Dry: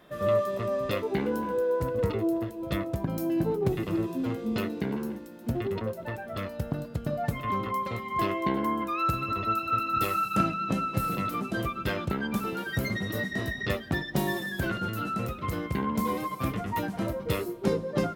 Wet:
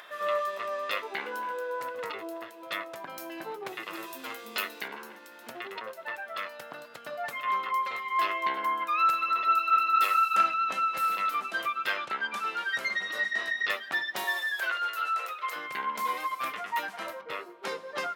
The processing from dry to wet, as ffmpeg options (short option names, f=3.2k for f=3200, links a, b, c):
-filter_complex "[0:a]asettb=1/sr,asplit=3[a][b][c];[a]atrim=end=3.934[d];[b]atrim=start=3.93:end=4.88,asetpts=PTS-STARTPTS,afade=t=in:d=0.004:c=qsin,afade=t=out:st=0.946:d=0.004:c=qsin,aemphasis=mode=production:type=50kf[e];[c]atrim=start=4.876[f];[d][e]acrossfade=d=0.004:c1=hsin:c2=qsin[g];[g][f]acrossfade=d=0.004:c1=qsin:c2=hsin,asettb=1/sr,asplit=3[h][i][j];[h]atrim=end=11.984[k];[i]atrim=start=11.98:end=13.58,asetpts=PTS-STARTPTS,afade=t=in:d=0.004:c=qsin,afade=t=out:st=1.596:d=0.004:c=qsin,lowpass=8.9k[l];[j]atrim=start=13.576[m];[k][l]acrossfade=d=0.004:c1=hsin:c2=qsin[n];[n][m]acrossfade=d=0.004:c1=qsin:c2=hsin,asettb=1/sr,asplit=3[o][p][q];[o]atrim=end=14.244[r];[p]atrim=start=14.24:end=15.56,asetpts=PTS-STARTPTS,afade=t=in:d=0.004:c=qsin,afade=t=out:st=1.316:d=0.004:c=qsin,highpass=f=410:w=0.5412,highpass=f=410:w=1.3066[s];[q]atrim=start=15.556[t];[r][s]acrossfade=d=0.004:c1=hsin:c2=qsin[u];[u][t]acrossfade=d=0.004:c1=qsin:c2=hsin,asettb=1/sr,asplit=3[v][w][x];[v]atrim=end=17.214[y];[w]atrim=start=17.21:end=17.63,asetpts=PTS-STARTPTS,afade=t=in:d=0.004:c=qsin,afade=t=out:st=0.416:d=0.004:c=qsin,lowpass=f=1.3k:p=1[z];[x]atrim=start=17.626[aa];[y][z]acrossfade=d=0.004:c1=hsin:c2=qsin[ab];[ab][aa]acrossfade=d=0.004:c1=qsin:c2=hsin,highpass=1.3k,highshelf=f=4.2k:g=-11,acompressor=mode=upward:threshold=-50dB:ratio=2.5,volume=8dB"